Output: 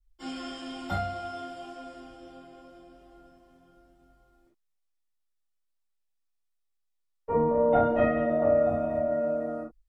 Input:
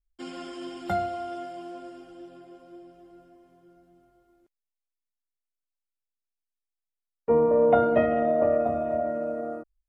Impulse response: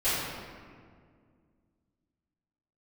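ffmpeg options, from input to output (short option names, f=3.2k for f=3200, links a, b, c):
-filter_complex "[0:a]asettb=1/sr,asplit=3[a][b][c];[a]atrim=end=7.374[d];[b]atrim=start=7.37:end=7.87,asetpts=PTS-STARTPTS,afade=t=in:d=0.004:c=qsin,afade=t=out:st=0.496:d=0.004:c=qsin,highshelf=f=4k:g=-6[e];[c]atrim=start=7.866[f];[d][e]acrossfade=d=0.004:c1=hsin:c2=qsin[g];[g][f]acrossfade=d=0.004:c1=qsin:c2=hsin,asplit=2[h][i];[i]acompressor=threshold=-35dB:ratio=6,volume=-3dB[j];[h][j]amix=inputs=2:normalize=0[k];[1:a]atrim=start_sample=2205,afade=t=out:st=0.18:d=0.01,atrim=end_sample=8379,asetrate=74970,aresample=44100[l];[k][l]afir=irnorm=-1:irlink=0,volume=-7.5dB"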